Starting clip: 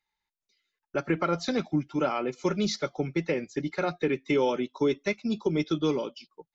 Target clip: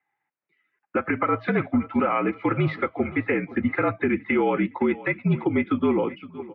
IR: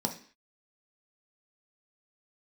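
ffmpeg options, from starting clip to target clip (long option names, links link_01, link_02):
-filter_complex "[0:a]acrossover=split=530|1100[link_01][link_02][link_03];[link_03]dynaudnorm=framelen=120:gausssize=13:maxgain=6.5dB[link_04];[link_01][link_02][link_04]amix=inputs=3:normalize=0,highpass=frequency=190:width_type=q:width=0.5412,highpass=frequency=190:width_type=q:width=1.307,lowpass=frequency=2400:width_type=q:width=0.5176,lowpass=frequency=2400:width_type=q:width=0.7071,lowpass=frequency=2400:width_type=q:width=1.932,afreqshift=-56,asettb=1/sr,asplit=3[link_05][link_06][link_07];[link_05]atrim=end=3.504[link_08];[link_06]atrim=start=3.5:end=4.3,asetpts=PTS-STARTPTS,afade=type=in:duration=0.004:curve=qsin,afade=type=out:start_time=0.796:duration=0.004:curve=qsin,lowshelf=frequency=240:gain=7.5[link_09];[link_07]atrim=start=4.296[link_10];[link_08][link_09]acrossfade=duration=0.004:curve1=hsin:curve2=qsin[link_11];[link_11][link_10]acrossfade=duration=0.004:curve1=qsin:curve2=hsin,aecho=1:1:515|1030|1545:0.0841|0.0412|0.0202,alimiter=limit=-21.5dB:level=0:latency=1:release=139,volume=8.5dB"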